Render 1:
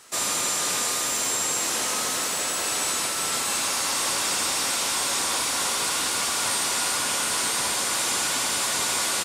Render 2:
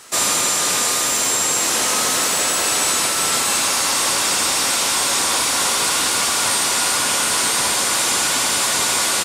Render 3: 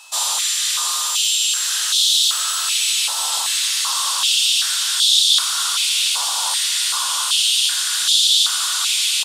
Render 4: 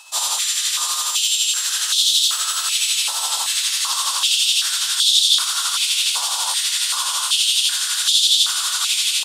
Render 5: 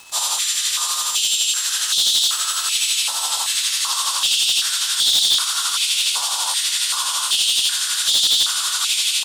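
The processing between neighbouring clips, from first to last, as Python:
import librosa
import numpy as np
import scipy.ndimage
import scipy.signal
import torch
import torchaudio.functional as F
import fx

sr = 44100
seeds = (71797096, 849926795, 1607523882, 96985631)

y1 = fx.rider(x, sr, range_db=10, speed_s=0.5)
y1 = F.gain(torch.from_numpy(y1), 7.0).numpy()
y2 = y1 + 10.0 ** (-37.0 / 20.0) * np.sin(2.0 * np.pi * 2600.0 * np.arange(len(y1)) / sr)
y2 = fx.high_shelf_res(y2, sr, hz=2700.0, db=7.0, q=3.0)
y2 = fx.filter_held_highpass(y2, sr, hz=2.6, low_hz=880.0, high_hz=3500.0)
y2 = F.gain(torch.from_numpy(y2), -10.5).numpy()
y3 = y2 * (1.0 - 0.4 / 2.0 + 0.4 / 2.0 * np.cos(2.0 * np.pi * 12.0 * (np.arange(len(y2)) / sr)))
y3 = F.gain(torch.from_numpy(y3), 1.0).numpy()
y4 = fx.dmg_crackle(y3, sr, seeds[0], per_s=120.0, level_db=-29.0)
y4 = np.clip(y4, -10.0 ** (-11.0 / 20.0), 10.0 ** (-11.0 / 20.0))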